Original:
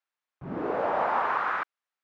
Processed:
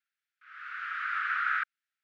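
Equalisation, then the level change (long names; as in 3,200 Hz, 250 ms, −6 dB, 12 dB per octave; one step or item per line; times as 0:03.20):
Butterworth high-pass 1,300 Hz 96 dB per octave
high-shelf EQ 4,500 Hz −11 dB
+4.5 dB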